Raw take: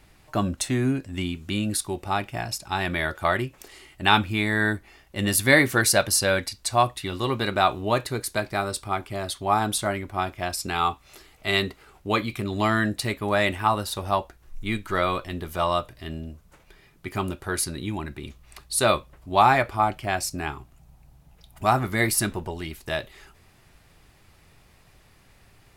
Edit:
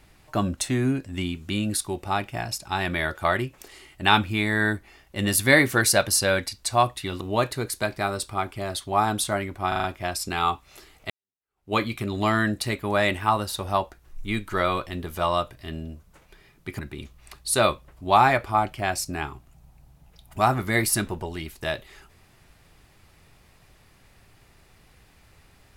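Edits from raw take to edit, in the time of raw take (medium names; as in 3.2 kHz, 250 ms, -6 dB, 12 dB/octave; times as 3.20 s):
7.21–7.75 s: delete
10.22 s: stutter 0.04 s, 5 plays
11.48–12.12 s: fade in exponential
17.17–18.04 s: delete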